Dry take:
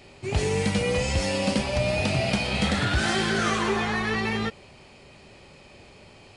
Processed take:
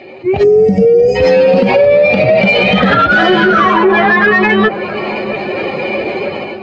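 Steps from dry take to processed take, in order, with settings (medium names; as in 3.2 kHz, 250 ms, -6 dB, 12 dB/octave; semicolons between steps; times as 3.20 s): spectral contrast enhancement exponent 1.8; level rider gain up to 16.5 dB; high-pass 370 Hz 12 dB/octave; compression 10:1, threshold -24 dBFS, peak gain reduction 13.5 dB; saturation -21 dBFS, distortion -20 dB; distance through air 180 m; feedback echo behind a low-pass 649 ms, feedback 58%, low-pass 1.1 kHz, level -12 dB; tape speed -4%; time-frequency box 0.43–1.16 s, 760–4600 Hz -19 dB; loudness maximiser +21.5 dB; trim -1 dB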